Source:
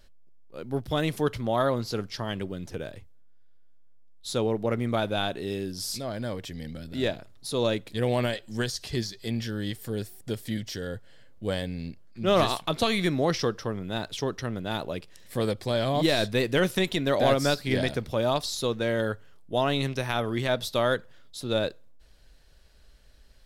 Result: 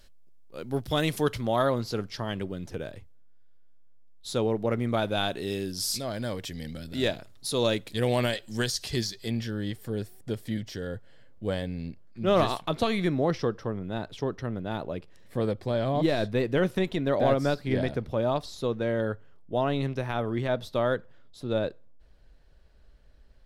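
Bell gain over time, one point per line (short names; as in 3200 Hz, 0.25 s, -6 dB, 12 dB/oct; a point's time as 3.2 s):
bell 14000 Hz 2.8 oct
1.3 s +4.5 dB
1.94 s -3 dB
4.91 s -3 dB
5.42 s +4 dB
9.09 s +4 dB
9.57 s -7.5 dB
12.72 s -7.5 dB
13.35 s -14.5 dB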